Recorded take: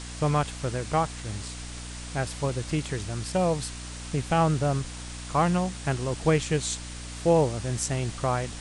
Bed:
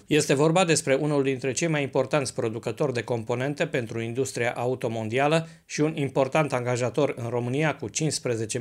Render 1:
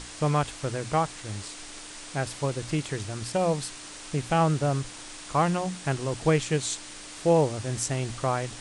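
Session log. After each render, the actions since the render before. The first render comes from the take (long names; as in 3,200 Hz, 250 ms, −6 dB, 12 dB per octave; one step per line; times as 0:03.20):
mains-hum notches 60/120/180/240 Hz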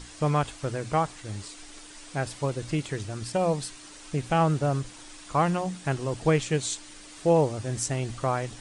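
broadband denoise 7 dB, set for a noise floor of −43 dBFS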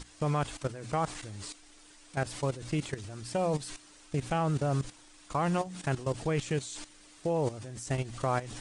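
transient designer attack 0 dB, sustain +4 dB
output level in coarse steps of 14 dB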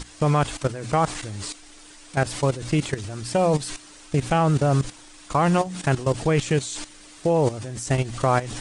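level +9.5 dB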